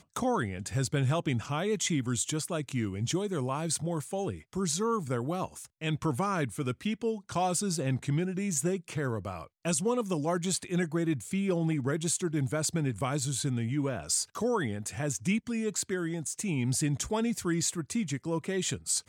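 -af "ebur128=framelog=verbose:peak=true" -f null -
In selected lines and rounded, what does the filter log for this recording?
Integrated loudness:
  I:         -31.0 LUFS
  Threshold: -41.0 LUFS
Loudness range:
  LRA:         1.8 LU
  Threshold: -51.1 LUFS
  LRA low:   -32.1 LUFS
  LRA high:  -30.2 LUFS
True peak:
  Peak:      -15.8 dBFS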